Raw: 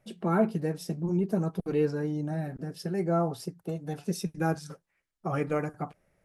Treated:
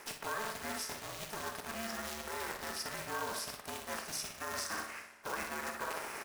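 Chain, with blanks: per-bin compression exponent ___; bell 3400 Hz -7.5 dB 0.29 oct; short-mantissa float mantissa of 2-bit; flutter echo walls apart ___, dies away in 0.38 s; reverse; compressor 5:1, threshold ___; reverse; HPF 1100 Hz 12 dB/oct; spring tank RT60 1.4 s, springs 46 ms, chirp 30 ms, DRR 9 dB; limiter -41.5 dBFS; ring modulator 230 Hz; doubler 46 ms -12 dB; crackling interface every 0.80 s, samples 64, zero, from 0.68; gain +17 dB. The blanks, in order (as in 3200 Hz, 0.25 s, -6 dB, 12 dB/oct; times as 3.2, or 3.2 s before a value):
0.6, 10.5 m, -41 dBFS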